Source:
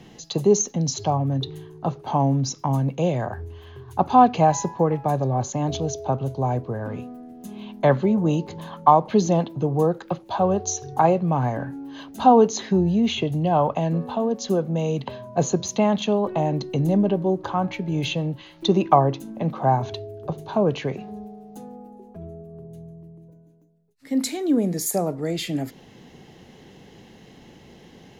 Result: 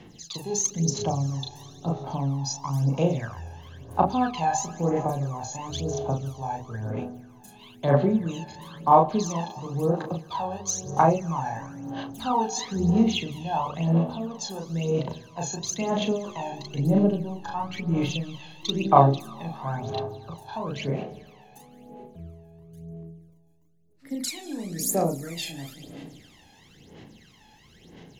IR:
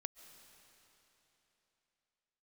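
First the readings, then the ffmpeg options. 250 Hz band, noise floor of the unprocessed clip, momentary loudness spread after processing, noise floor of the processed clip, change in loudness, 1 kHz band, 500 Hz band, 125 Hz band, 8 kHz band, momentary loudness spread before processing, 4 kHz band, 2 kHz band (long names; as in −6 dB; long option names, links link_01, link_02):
−4.5 dB, −49 dBFS, 18 LU, −55 dBFS, −4.0 dB, −4.0 dB, −5.5 dB, −3.0 dB, −0.5 dB, 19 LU, −1.5 dB, −2.5 dB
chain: -filter_complex "[0:a]tiltshelf=frequency=1300:gain=-3.5,bandreject=frequency=48.71:width_type=h:width=4,bandreject=frequency=97.42:width_type=h:width=4,bandreject=frequency=146.13:width_type=h:width=4,bandreject=frequency=194.84:width_type=h:width=4,bandreject=frequency=243.55:width_type=h:width=4,bandreject=frequency=292.26:width_type=h:width=4,bandreject=frequency=340.97:width_type=h:width=4,bandreject=frequency=389.68:width_type=h:width=4,bandreject=frequency=438.39:width_type=h:width=4,bandreject=frequency=487.1:width_type=h:width=4,bandreject=frequency=535.81:width_type=h:width=4,bandreject=frequency=584.52:width_type=h:width=4,bandreject=frequency=633.23:width_type=h:width=4,bandreject=frequency=681.94:width_type=h:width=4,bandreject=frequency=730.65:width_type=h:width=4,bandreject=frequency=779.36:width_type=h:width=4,bandreject=frequency=828.07:width_type=h:width=4,bandreject=frequency=876.78:width_type=h:width=4,asplit=2[link_01][link_02];[1:a]atrim=start_sample=2205,adelay=36[link_03];[link_02][link_03]afir=irnorm=-1:irlink=0,volume=2dB[link_04];[link_01][link_04]amix=inputs=2:normalize=0,aphaser=in_gain=1:out_gain=1:delay=1.2:decay=0.74:speed=1:type=sinusoidal,volume=-9.5dB"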